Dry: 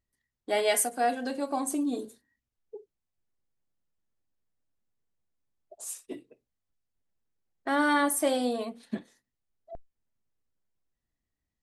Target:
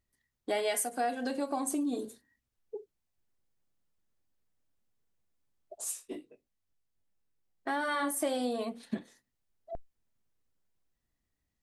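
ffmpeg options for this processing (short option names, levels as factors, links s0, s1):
-filter_complex "[0:a]asplit=3[s0][s1][s2];[s0]afade=t=out:st=5.91:d=0.02[s3];[s1]flanger=delay=18.5:depth=2.9:speed=1.9,afade=t=in:st=5.91:d=0.02,afade=t=out:st=8.21:d=0.02[s4];[s2]afade=t=in:st=8.21:d=0.02[s5];[s3][s4][s5]amix=inputs=3:normalize=0,acompressor=threshold=0.0224:ratio=3,volume=1.33"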